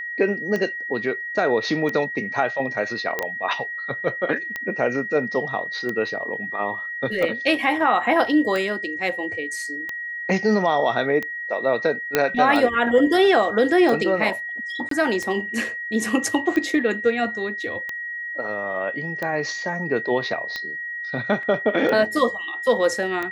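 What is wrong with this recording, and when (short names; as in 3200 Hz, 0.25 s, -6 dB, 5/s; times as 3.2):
tick 45 rpm -14 dBFS
tone 1900 Hz -28 dBFS
3.19 pop -9 dBFS
12.15 pop -3 dBFS
14.89–14.91 gap 23 ms
21.43 gap 2.1 ms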